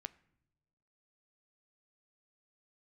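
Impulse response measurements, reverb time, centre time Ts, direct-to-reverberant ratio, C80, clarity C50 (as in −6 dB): non-exponential decay, 2 ms, 14.0 dB, 22.5 dB, 20.0 dB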